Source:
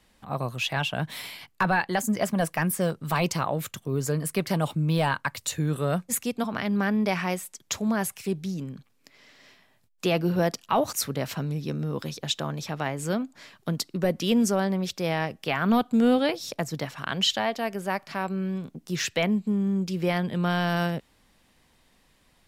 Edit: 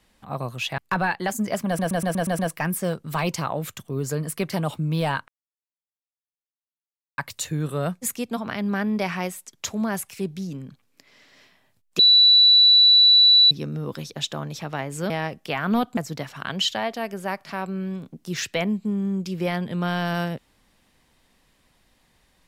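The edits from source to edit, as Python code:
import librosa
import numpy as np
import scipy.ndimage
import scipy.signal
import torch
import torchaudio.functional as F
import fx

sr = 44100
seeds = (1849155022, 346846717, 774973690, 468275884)

y = fx.edit(x, sr, fx.cut(start_s=0.78, length_s=0.69),
    fx.stutter(start_s=2.36, slice_s=0.12, count=7),
    fx.insert_silence(at_s=5.25, length_s=1.9),
    fx.bleep(start_s=10.06, length_s=1.52, hz=3950.0, db=-10.5),
    fx.cut(start_s=13.17, length_s=1.91),
    fx.cut(start_s=15.95, length_s=0.64), tone=tone)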